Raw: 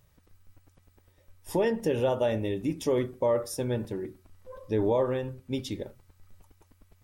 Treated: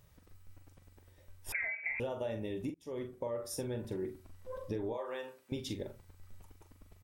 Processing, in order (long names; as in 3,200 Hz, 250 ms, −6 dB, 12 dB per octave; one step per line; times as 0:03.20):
0:02.70–0:03.96: fade in
0:04.93–0:05.52: high-pass filter 660 Hz 12 dB per octave
downward compressor 8 to 1, threshold −35 dBFS, peak gain reduction 13.5 dB
double-tracking delay 43 ms −8 dB
0:01.52–0:02.00: voice inversion scrambler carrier 2,500 Hz